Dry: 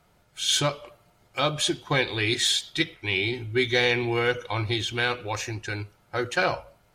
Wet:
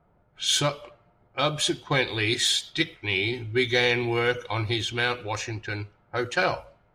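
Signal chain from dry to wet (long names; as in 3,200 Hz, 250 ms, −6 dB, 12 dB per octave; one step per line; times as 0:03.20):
low-pass that shuts in the quiet parts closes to 1,100 Hz, open at −24 dBFS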